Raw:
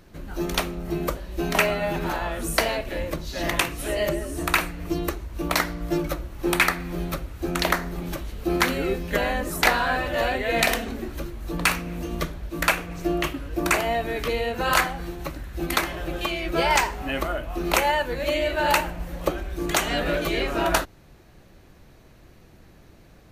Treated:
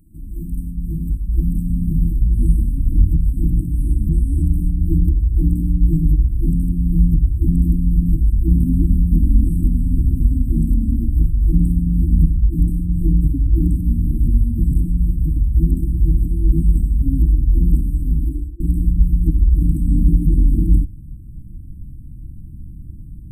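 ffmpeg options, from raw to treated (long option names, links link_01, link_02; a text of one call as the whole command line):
ffmpeg -i in.wav -filter_complex "[0:a]asettb=1/sr,asplit=3[link_01][link_02][link_03];[link_01]atrim=end=1.274[link_04];[link_02]atrim=start=1.27:end=3.28,asetpts=PTS-STARTPTS,afade=type=in:duration=0.004:curve=qsin,afade=type=out:start_time=2.006:duration=0.004:curve=qsin,aphaser=in_gain=1:out_gain=1:delay=1.6:decay=0.3:speed=1.8:type=triangular[link_05];[link_03]atrim=start=3.276[link_06];[link_04][link_05]acrossfade=duration=0.004:curve1=hsin:curve2=qsin[link_07];[link_07][link_06]acrossfade=duration=0.004:curve1=qsin:curve2=hsin,asplit=2[link_08][link_09];[link_08]atrim=end=18.6,asetpts=PTS-STARTPTS,afade=type=out:start_time=18.11:duration=0.49[link_10];[link_09]atrim=start=18.6,asetpts=PTS-STARTPTS,afade=type=in:duration=0.004:curve=hsin[link_11];[link_10][link_11]concat=n=2:v=0:a=1,afftfilt=real='re*(1-between(b*sr/4096,340,7800))':imag='im*(1-between(b*sr/4096,340,7800))':win_size=4096:overlap=0.75,asubboost=boost=11.5:cutoff=170,acrossover=split=3100[link_12][link_13];[link_13]acompressor=threshold=-48dB:ratio=4:attack=1:release=60[link_14];[link_12][link_14]amix=inputs=2:normalize=0" out.wav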